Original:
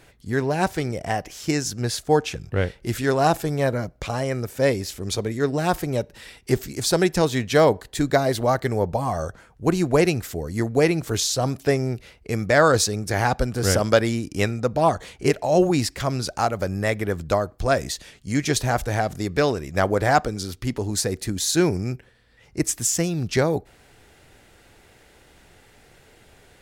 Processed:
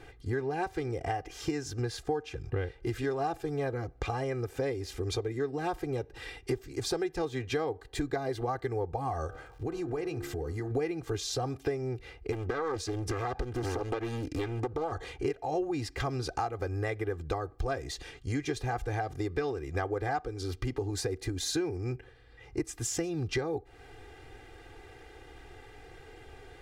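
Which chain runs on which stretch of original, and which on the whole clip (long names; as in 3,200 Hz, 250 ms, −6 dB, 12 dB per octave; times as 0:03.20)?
0:09.26–0:10.70: hum removal 69.68 Hz, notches 25 + surface crackle 220 per second −46 dBFS + downward compressor 4 to 1, threshold −33 dBFS
0:12.32–0:14.92: downward compressor 2.5 to 1, threshold −24 dBFS + highs frequency-modulated by the lows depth 0.85 ms
whole clip: low-pass filter 2,200 Hz 6 dB per octave; comb filter 2.5 ms, depth 94%; downward compressor 6 to 1, threshold −30 dBFS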